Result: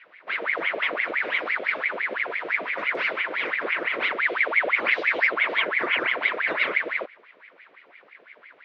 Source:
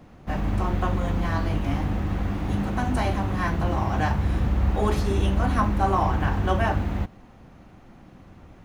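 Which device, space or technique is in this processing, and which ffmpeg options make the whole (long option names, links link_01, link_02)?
voice changer toy: -filter_complex "[0:a]aeval=exprs='val(0)*sin(2*PI*1300*n/s+1300*0.7/5.9*sin(2*PI*5.9*n/s))':channel_layout=same,highpass=420,equalizer=frequency=820:width_type=q:width=4:gain=-10,equalizer=frequency=1200:width_type=q:width=4:gain=-4,equalizer=frequency=2200:width_type=q:width=4:gain=5,lowpass=frequency=3900:width=0.5412,lowpass=frequency=3900:width=1.3066,asettb=1/sr,asplit=3[link_01][link_02][link_03];[link_01]atrim=end=4.164[link_04];[link_02]atrim=start=4.16:end=5.27,asetpts=PTS-STARTPTS,afade=type=in:duration=0.004:curve=qsin,afade=type=out:start_time=1.106:duration=0.004:curve=qsin,equalizer=frequency=3300:width=1.3:gain=4.5[link_05];[link_03]atrim=start=5.266[link_06];[link_04][link_05]acrossfade=duration=0.004:curve1=hsin:curve2=qsin[link_07];[link_07][link_06]acrossfade=duration=0.004:curve1=qsin:curve2=hsin"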